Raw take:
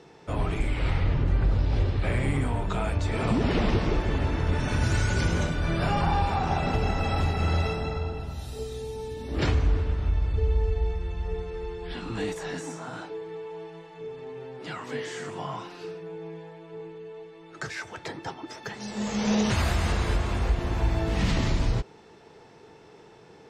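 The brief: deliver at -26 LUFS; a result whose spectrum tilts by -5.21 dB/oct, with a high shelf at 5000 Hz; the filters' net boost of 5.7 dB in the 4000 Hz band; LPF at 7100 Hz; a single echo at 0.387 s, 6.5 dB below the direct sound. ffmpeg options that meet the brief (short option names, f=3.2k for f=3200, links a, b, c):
-af "lowpass=7.1k,equalizer=f=4k:t=o:g=4,highshelf=f=5k:g=8,aecho=1:1:387:0.473,volume=1dB"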